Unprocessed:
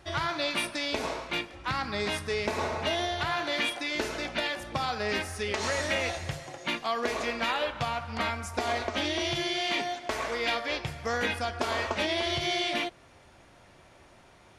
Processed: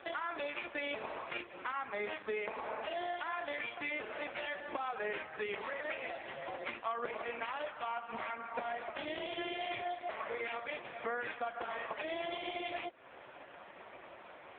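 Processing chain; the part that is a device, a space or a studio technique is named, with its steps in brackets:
voicemail (band-pass filter 360–3,000 Hz; downward compressor 8 to 1, threshold −44 dBFS, peak gain reduction 17.5 dB; level +10 dB; AMR narrowband 4.75 kbit/s 8,000 Hz)

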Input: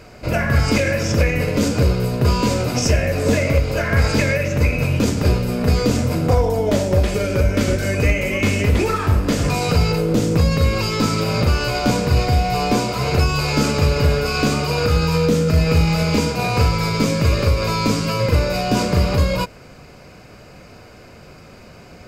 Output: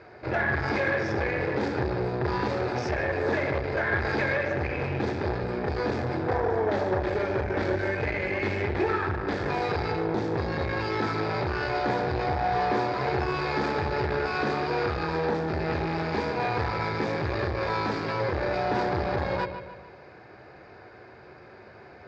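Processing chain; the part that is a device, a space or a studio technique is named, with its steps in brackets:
0:07.85–0:09.43: elliptic low-pass filter 8,200 Hz
analogue delay pedal into a guitar amplifier (bucket-brigade delay 147 ms, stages 4,096, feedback 46%, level −10.5 dB; tube saturation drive 18 dB, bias 0.6; loudspeaker in its box 95–4,100 Hz, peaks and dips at 170 Hz −8 dB, 250 Hz −6 dB, 370 Hz +8 dB, 830 Hz +8 dB, 1,700 Hz +9 dB, 2,900 Hz −9 dB)
level −4.5 dB

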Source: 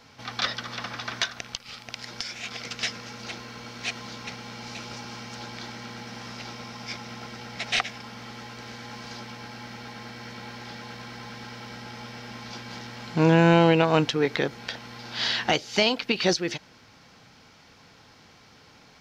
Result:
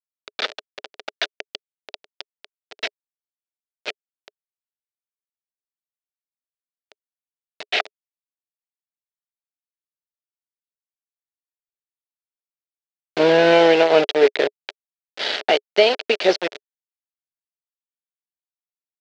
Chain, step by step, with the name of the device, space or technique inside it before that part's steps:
hand-held game console (bit reduction 4 bits; loudspeaker in its box 400–4,400 Hz, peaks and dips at 420 Hz +10 dB, 610 Hz +8 dB, 1,100 Hz −7 dB)
level +3.5 dB

